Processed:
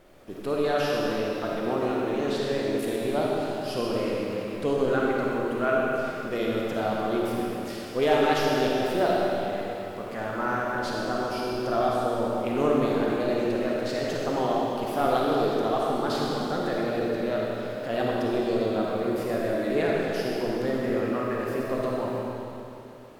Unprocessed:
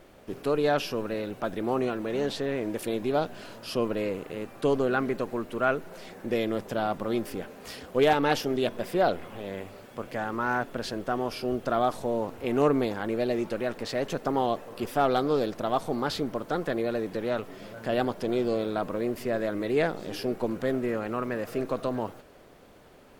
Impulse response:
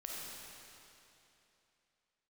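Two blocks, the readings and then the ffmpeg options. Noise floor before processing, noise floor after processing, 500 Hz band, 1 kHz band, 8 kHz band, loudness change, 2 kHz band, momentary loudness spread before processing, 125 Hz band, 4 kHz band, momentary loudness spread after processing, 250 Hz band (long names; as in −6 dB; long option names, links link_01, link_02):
−52 dBFS, −37 dBFS, +2.5 dB, +2.0 dB, +1.5 dB, +2.0 dB, +2.0 dB, 9 LU, +2.0 dB, +2.0 dB, 7 LU, +2.0 dB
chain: -filter_complex "[1:a]atrim=start_sample=2205[link_01];[0:a][link_01]afir=irnorm=-1:irlink=0,volume=2.5dB"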